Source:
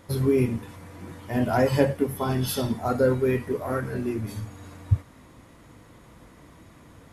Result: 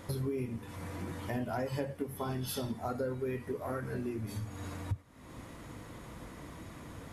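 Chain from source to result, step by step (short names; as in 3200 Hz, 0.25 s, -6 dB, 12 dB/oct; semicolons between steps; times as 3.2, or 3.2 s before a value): compressor 4:1, threshold -39 dBFS, peak gain reduction 20.5 dB; gain +3 dB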